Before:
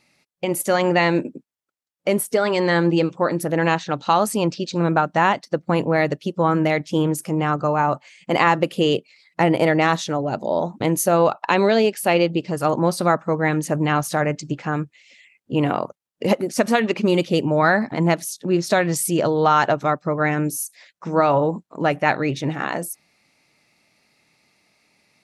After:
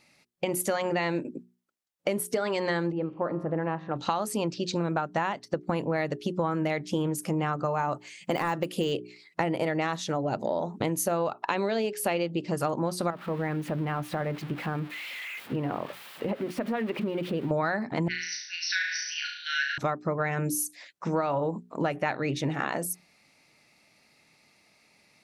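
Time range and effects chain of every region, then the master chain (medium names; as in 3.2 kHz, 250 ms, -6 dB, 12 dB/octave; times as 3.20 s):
2.92–3.96 s: low-pass 1.3 kHz + feedback comb 53 Hz, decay 1.6 s, mix 50%
7.74–8.92 s: de-esser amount 75% + treble shelf 5.4 kHz +7.5 dB
13.10–17.51 s: zero-crossing glitches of -15 dBFS + distance through air 500 m + compression 2.5:1, threshold -27 dBFS
18.08–19.78 s: brick-wall FIR band-pass 1.4–6.1 kHz + flutter echo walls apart 6.1 m, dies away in 0.68 s
whole clip: hum notches 60/120/180/240/300/360/420 Hz; compression 6:1, threshold -25 dBFS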